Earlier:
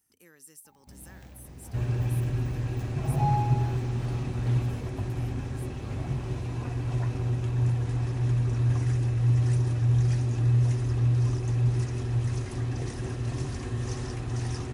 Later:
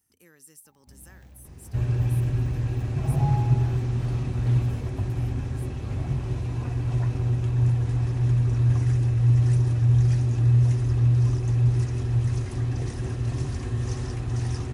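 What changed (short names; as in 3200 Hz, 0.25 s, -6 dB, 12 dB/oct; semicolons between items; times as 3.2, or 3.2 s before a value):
first sound -6.0 dB; master: add bell 69 Hz +6 dB 2.1 oct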